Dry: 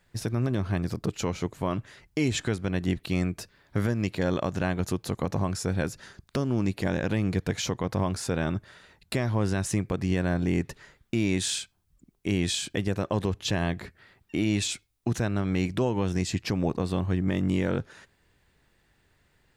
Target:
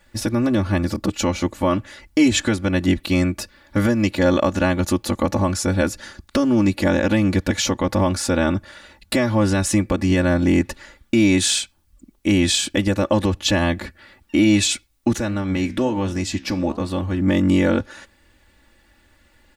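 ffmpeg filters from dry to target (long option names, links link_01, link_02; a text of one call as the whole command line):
ffmpeg -i in.wav -filter_complex "[0:a]aecho=1:1:3.5:1,asplit=3[link_01][link_02][link_03];[link_01]afade=type=out:start_time=15.16:duration=0.02[link_04];[link_02]flanger=delay=8.9:depth=7.7:regen=82:speed=1.3:shape=sinusoidal,afade=type=in:start_time=15.16:duration=0.02,afade=type=out:start_time=17.2:duration=0.02[link_05];[link_03]afade=type=in:start_time=17.2:duration=0.02[link_06];[link_04][link_05][link_06]amix=inputs=3:normalize=0,volume=7dB" out.wav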